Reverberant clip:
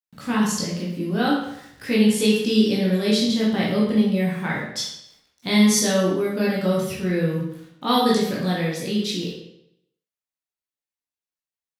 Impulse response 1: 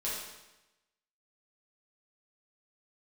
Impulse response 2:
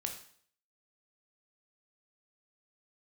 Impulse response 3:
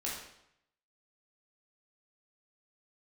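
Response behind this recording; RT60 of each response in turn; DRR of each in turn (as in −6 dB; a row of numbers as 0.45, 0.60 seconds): 3; 1.0, 0.55, 0.75 seconds; −8.5, 3.0, −6.0 decibels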